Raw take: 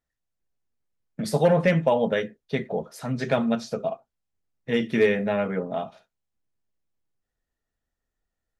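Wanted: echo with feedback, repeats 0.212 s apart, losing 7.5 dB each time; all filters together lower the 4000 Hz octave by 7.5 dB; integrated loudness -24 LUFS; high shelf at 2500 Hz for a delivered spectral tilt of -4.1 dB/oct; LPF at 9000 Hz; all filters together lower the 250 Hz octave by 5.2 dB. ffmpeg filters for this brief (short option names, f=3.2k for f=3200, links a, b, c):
-af "lowpass=9k,equalizer=f=250:t=o:g=-7,highshelf=f=2.5k:g=-7.5,equalizer=f=4k:t=o:g=-3.5,aecho=1:1:212|424|636|848|1060:0.422|0.177|0.0744|0.0312|0.0131,volume=2.5dB"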